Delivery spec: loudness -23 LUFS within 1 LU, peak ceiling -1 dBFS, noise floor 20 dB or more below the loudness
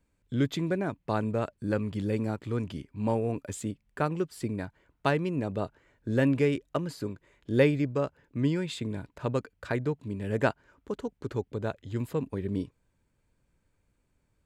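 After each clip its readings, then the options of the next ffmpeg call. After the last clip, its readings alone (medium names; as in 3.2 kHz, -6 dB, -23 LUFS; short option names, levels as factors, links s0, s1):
loudness -31.0 LUFS; peak level -9.5 dBFS; loudness target -23.0 LUFS
-> -af "volume=2.51"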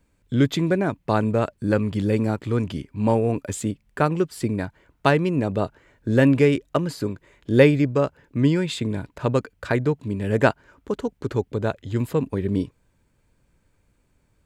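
loudness -23.0 LUFS; peak level -1.5 dBFS; noise floor -66 dBFS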